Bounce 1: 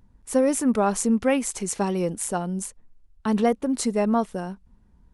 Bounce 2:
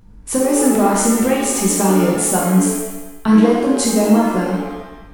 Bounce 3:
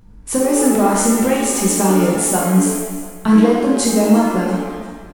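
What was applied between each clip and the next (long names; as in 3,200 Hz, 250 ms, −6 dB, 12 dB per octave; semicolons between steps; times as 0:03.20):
downward compressor, threshold −24 dBFS, peak gain reduction 9 dB; reverb with rising layers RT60 1 s, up +7 semitones, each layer −8 dB, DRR −3.5 dB; level +7.5 dB
repeating echo 344 ms, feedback 41%, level −17 dB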